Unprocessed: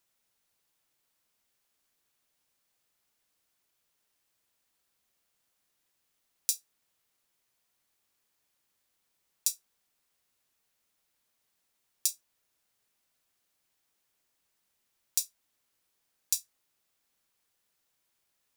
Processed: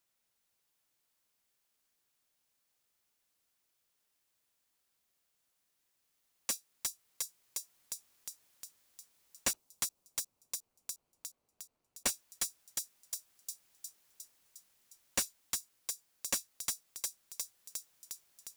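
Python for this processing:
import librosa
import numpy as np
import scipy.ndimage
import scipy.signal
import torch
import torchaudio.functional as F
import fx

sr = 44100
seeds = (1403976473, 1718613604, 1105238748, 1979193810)

y = fx.median_filter(x, sr, points=25, at=(9.53, 12.06))
y = fx.echo_wet_highpass(y, sr, ms=357, feedback_pct=63, hz=4300.0, wet_db=-5.0)
y = fx.rider(y, sr, range_db=5, speed_s=2.0)
y = fx.slew_limit(y, sr, full_power_hz=320.0)
y = F.gain(torch.from_numpy(y), 1.0).numpy()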